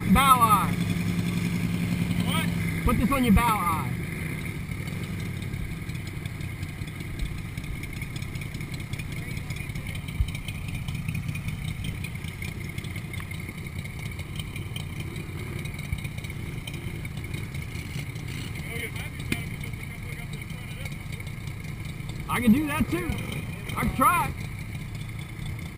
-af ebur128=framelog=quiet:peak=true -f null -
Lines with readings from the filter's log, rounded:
Integrated loudness:
  I:         -29.1 LUFS
  Threshold: -39.1 LUFS
Loudness range:
  LRA:         9.3 LU
  Threshold: -50.2 LUFS
  LRA low:   -34.5 LUFS
  LRA high:  -25.2 LUFS
True peak:
  Peak:       -5.2 dBFS